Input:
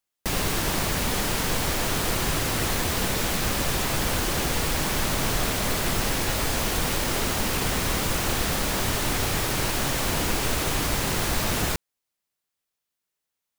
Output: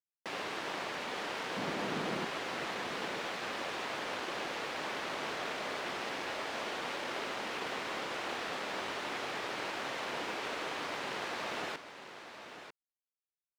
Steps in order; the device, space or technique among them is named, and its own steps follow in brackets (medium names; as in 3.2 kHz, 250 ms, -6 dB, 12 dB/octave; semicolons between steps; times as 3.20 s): phone line with mismatched companding (band-pass 390–3300 Hz; companding laws mixed up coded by A); 1.56–2.25 s: peaking EQ 180 Hz +15 dB 1.6 oct; delay 945 ms -10.5 dB; trim -7 dB